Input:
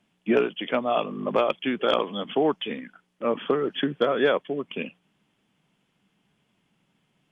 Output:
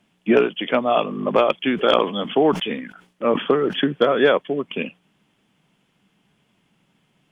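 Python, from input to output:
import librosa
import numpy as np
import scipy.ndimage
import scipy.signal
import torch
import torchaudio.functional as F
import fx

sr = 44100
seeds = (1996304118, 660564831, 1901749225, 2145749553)

y = fx.sustainer(x, sr, db_per_s=140.0, at=(1.63, 3.76))
y = F.gain(torch.from_numpy(y), 5.5).numpy()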